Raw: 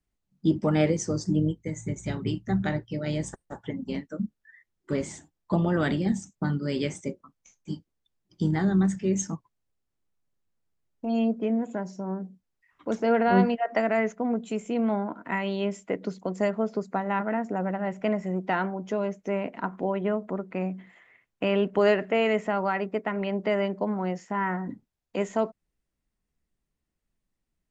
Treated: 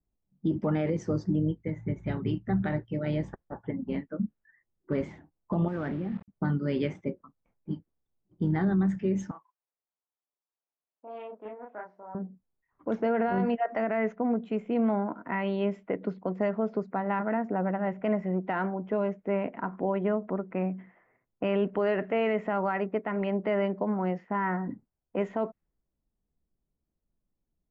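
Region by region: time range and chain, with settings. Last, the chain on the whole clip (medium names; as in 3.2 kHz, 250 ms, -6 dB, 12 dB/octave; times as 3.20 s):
5.68–6.28 s: median filter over 15 samples + level held to a coarse grid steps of 16 dB + word length cut 8-bit, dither none
9.31–12.15 s: high-pass 980 Hz + doubling 33 ms -2 dB + loudspeaker Doppler distortion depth 0.2 ms
whole clip: level-controlled noise filter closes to 810 Hz, open at -22 dBFS; low-pass 2.3 kHz 12 dB/octave; peak limiter -18.5 dBFS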